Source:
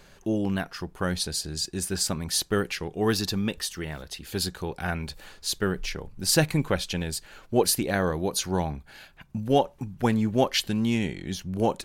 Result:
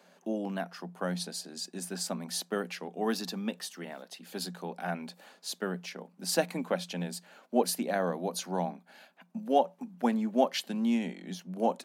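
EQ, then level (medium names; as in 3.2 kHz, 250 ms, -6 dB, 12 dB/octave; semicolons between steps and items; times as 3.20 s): rippled Chebyshev high-pass 170 Hz, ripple 9 dB; 0.0 dB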